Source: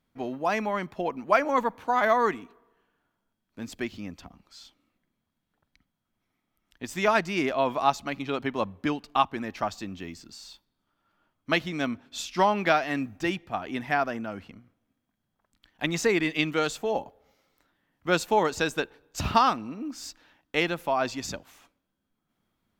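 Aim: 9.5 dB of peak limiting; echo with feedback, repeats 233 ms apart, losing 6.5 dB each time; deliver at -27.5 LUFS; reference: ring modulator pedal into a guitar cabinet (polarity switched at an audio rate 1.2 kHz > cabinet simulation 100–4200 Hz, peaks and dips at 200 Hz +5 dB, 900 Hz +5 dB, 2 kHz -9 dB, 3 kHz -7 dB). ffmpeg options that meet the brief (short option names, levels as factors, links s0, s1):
-af "alimiter=limit=0.141:level=0:latency=1,aecho=1:1:233|466|699|932|1165|1398:0.473|0.222|0.105|0.0491|0.0231|0.0109,aeval=exprs='val(0)*sgn(sin(2*PI*1200*n/s))':c=same,highpass=100,equalizer=f=200:t=q:w=4:g=5,equalizer=f=900:t=q:w=4:g=5,equalizer=f=2000:t=q:w=4:g=-9,equalizer=f=3000:t=q:w=4:g=-7,lowpass=f=4200:w=0.5412,lowpass=f=4200:w=1.3066,volume=1.41"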